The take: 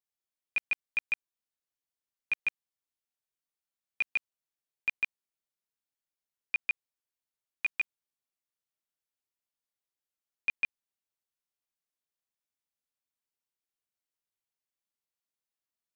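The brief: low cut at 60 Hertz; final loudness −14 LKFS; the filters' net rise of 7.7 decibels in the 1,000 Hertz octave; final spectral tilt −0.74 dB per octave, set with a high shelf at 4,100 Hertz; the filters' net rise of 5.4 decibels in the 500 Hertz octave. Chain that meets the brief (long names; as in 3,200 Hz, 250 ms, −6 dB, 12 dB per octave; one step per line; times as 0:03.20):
high-pass filter 60 Hz
parametric band 500 Hz +4 dB
parametric band 1,000 Hz +8.5 dB
high-shelf EQ 4,100 Hz +3.5 dB
level +17.5 dB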